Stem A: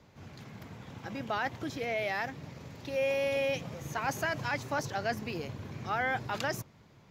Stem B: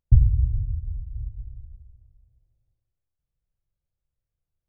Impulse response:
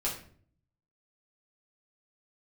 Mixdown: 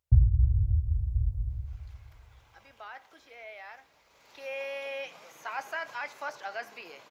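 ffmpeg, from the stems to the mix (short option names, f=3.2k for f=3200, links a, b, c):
-filter_complex "[0:a]highpass=760,bandreject=f=1.8k:w=19,acrossover=split=3200[a][b];[b]acompressor=threshold=-53dB:ratio=4:attack=1:release=60[c];[a][c]amix=inputs=2:normalize=0,adelay=1500,volume=-13dB,afade=t=in:st=4.08:d=0.32:silence=0.354813,asplit=2[d][e];[e]volume=-14dB[f];[1:a]highpass=70,equalizer=f=210:w=0.75:g=-13.5,volume=2dB,asplit=2[g][h];[h]volume=-20.5dB[i];[2:a]atrim=start_sample=2205[j];[f][i]amix=inputs=2:normalize=0[k];[k][j]afir=irnorm=-1:irlink=0[l];[d][g][l]amix=inputs=3:normalize=0,dynaudnorm=f=370:g=3:m=10.5dB"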